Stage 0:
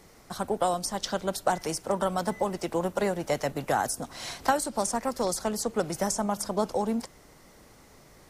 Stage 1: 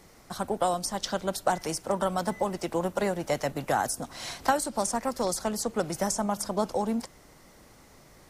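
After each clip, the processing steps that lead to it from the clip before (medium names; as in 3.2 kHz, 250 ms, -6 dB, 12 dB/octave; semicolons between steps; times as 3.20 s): peaking EQ 430 Hz -2.5 dB 0.23 oct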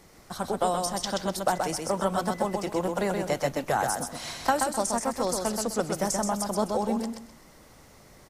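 feedback delay 128 ms, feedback 25%, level -4.5 dB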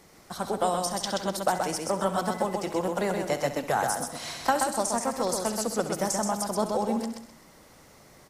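bass shelf 77 Hz -8.5 dB; flutter echo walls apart 11.5 m, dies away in 0.32 s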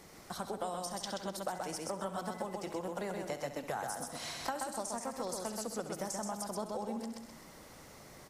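compression 2.5:1, threshold -41 dBFS, peak gain reduction 15 dB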